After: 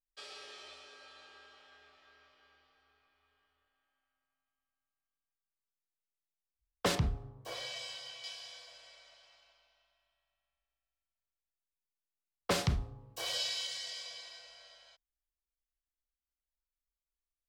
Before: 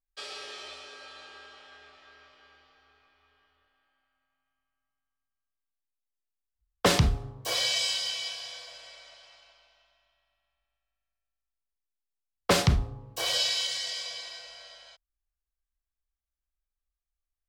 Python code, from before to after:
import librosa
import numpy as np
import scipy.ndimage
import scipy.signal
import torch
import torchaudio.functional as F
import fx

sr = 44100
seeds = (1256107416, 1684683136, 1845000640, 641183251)

y = fx.high_shelf(x, sr, hz=2700.0, db=-11.0, at=(6.95, 8.24))
y = y * 10.0 ** (-8.5 / 20.0)